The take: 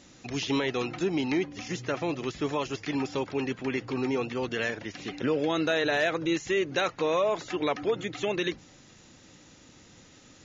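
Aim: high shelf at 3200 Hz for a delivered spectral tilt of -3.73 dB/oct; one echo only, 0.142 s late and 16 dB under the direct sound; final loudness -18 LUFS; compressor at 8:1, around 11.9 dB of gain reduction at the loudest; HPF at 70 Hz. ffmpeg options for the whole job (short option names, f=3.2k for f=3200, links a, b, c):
-af "highpass=70,highshelf=f=3.2k:g=7,acompressor=threshold=-34dB:ratio=8,aecho=1:1:142:0.158,volume=19.5dB"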